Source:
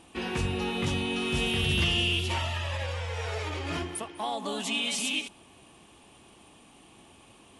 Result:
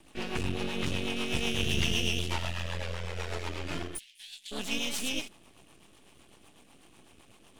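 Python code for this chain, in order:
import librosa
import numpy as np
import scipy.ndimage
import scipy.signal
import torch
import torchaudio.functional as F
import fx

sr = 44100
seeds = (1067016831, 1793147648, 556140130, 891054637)

y = np.maximum(x, 0.0)
y = fx.rotary(y, sr, hz=8.0)
y = fx.cheby2_highpass(y, sr, hz=1300.0, order=4, stop_db=40, at=(3.97, 4.51), fade=0.02)
y = F.gain(torch.from_numpy(y), 3.0).numpy()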